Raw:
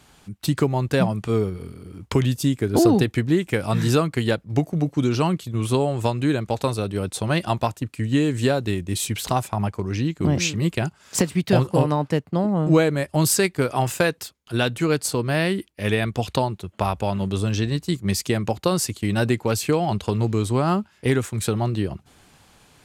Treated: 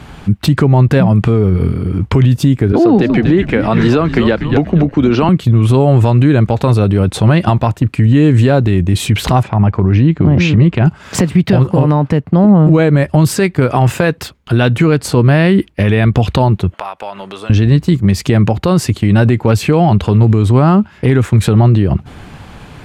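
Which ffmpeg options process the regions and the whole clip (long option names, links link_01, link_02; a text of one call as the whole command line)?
ffmpeg -i in.wav -filter_complex "[0:a]asettb=1/sr,asplit=3[link_01][link_02][link_03];[link_01]atrim=end=2.724[link_04];[link_02]atrim=start=2.72:end=5.29,asetpts=PTS-STARTPTS,afade=type=in:duration=0.004:curve=qsin,afade=type=out:start_time=2.566:duration=0.004:curve=qsin,acrossover=split=190 5900:gain=0.126 1 0.2[link_05][link_06][link_07];[link_05][link_06][link_07]amix=inputs=3:normalize=0,asplit=4[link_08][link_09][link_10][link_11];[link_09]adelay=239,afreqshift=-81,volume=-13dB[link_12];[link_10]adelay=478,afreqshift=-162,volume=-22.6dB[link_13];[link_11]adelay=717,afreqshift=-243,volume=-32.3dB[link_14];[link_08][link_12][link_13][link_14]amix=inputs=4:normalize=0,atrim=end_sample=113337[link_15];[link_03]atrim=start=5.286[link_16];[link_04][link_15]acrossfade=duration=0.004:curve1=hsin:curve2=qsin[link_17];[link_17][link_16]acrossfade=duration=0.004:curve1=qsin:curve2=hsin,asettb=1/sr,asplit=3[link_18][link_19][link_20];[link_18]atrim=end=9.434[link_21];[link_19]atrim=start=9.43:end=10.87,asetpts=PTS-STARTPTS,afade=type=in:duration=0.004:curve=qsin,afade=type=out:start_time=1.436:duration=0.004:curve=qsin,lowpass=5600,highshelf=frequency=4100:gain=-6.5,acompressor=threshold=-28dB:ratio=2:attack=3.2:release=140:knee=1:detection=peak[link_22];[link_20]atrim=start=10.866[link_23];[link_21][link_22]acrossfade=duration=0.004:curve1=hsin:curve2=qsin[link_24];[link_24][link_23]acrossfade=duration=0.004:curve1=qsin:curve2=hsin,asettb=1/sr,asplit=3[link_25][link_26][link_27];[link_25]atrim=end=16.744[link_28];[link_26]atrim=start=16.74:end=17.5,asetpts=PTS-STARTPTS,afade=type=in:duration=0.004:curve=qsin,afade=type=out:start_time=0.756:duration=0.004:curve=qsin,highpass=720,bandreject=frequency=7300:width=21,acompressor=threshold=-46dB:ratio=2.5:attack=3.2:release=140:knee=1:detection=peak[link_29];[link_27]atrim=start=17.496[link_30];[link_28][link_29]acrossfade=duration=0.004:curve1=hsin:curve2=qsin[link_31];[link_31][link_30]acrossfade=duration=0.004:curve1=qsin:curve2=hsin,acompressor=threshold=-26dB:ratio=3,bass=frequency=250:gain=6,treble=frequency=4000:gain=-14,alimiter=level_in=19.5dB:limit=-1dB:release=50:level=0:latency=1,volume=-1dB" out.wav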